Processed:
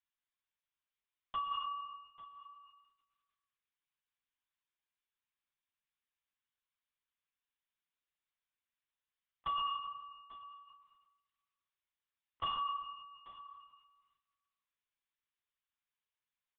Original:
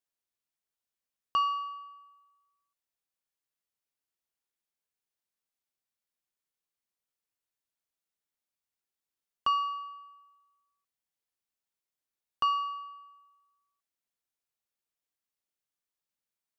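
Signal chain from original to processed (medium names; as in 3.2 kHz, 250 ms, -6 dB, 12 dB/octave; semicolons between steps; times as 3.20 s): high-pass 990 Hz 12 dB/octave; compression 2:1, threshold -40 dBFS, peak gain reduction 8 dB; saturation -26.5 dBFS, distortion -24 dB; flange 0.42 Hz, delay 6.2 ms, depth 1.6 ms, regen -75%; hard clipper -37.5 dBFS, distortion -20 dB; delay 845 ms -16.5 dB; on a send at -9.5 dB: reverberation RT60 1.5 s, pre-delay 90 ms; on the sum: LPC vocoder at 8 kHz whisper; trim +5.5 dB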